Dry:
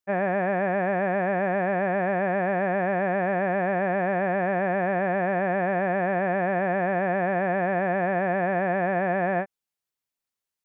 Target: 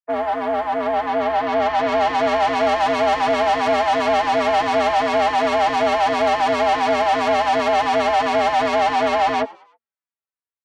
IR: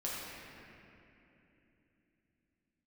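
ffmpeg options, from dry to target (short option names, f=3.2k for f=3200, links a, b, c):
-filter_complex "[0:a]afwtdn=0.0447,lowpass=1.7k,equalizer=f=99:t=o:w=1.3:g=-12.5,aecho=1:1:5.5:0.39,acrossover=split=200|800[a][b][c];[c]acontrast=51[d];[a][b][d]amix=inputs=3:normalize=0,afreqshift=72,asplit=2[e][f];[f]asoftclip=type=hard:threshold=-25dB,volume=-5dB[g];[e][g]amix=inputs=2:normalize=0,dynaudnorm=f=680:g=5:m=11.5dB,asoftclip=type=tanh:threshold=-16.5dB,asplit=4[h][i][j][k];[i]adelay=105,afreqshift=77,volume=-22.5dB[l];[j]adelay=210,afreqshift=154,volume=-30dB[m];[k]adelay=315,afreqshift=231,volume=-37.6dB[n];[h][l][m][n]amix=inputs=4:normalize=0,asplit=2[o][p];[p]adelay=3.5,afreqshift=-2.8[q];[o][q]amix=inputs=2:normalize=1,volume=3dB"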